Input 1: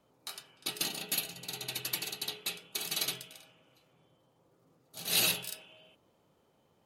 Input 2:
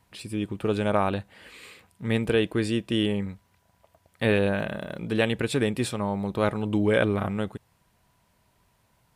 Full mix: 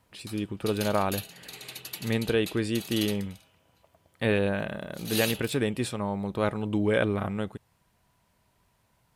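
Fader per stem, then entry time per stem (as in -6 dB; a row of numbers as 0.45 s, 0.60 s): -4.0 dB, -2.5 dB; 0.00 s, 0.00 s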